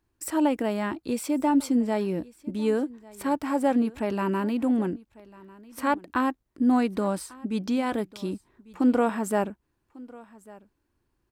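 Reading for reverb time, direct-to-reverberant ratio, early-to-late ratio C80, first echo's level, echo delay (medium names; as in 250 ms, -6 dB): no reverb, no reverb, no reverb, -22.0 dB, 1147 ms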